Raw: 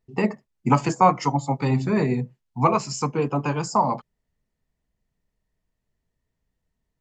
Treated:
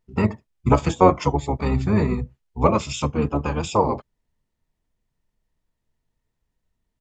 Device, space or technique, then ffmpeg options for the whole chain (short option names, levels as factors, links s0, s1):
octave pedal: -filter_complex "[0:a]asplit=2[s0][s1];[s1]asetrate=22050,aresample=44100,atempo=2,volume=1[s2];[s0][s2]amix=inputs=2:normalize=0,volume=0.841"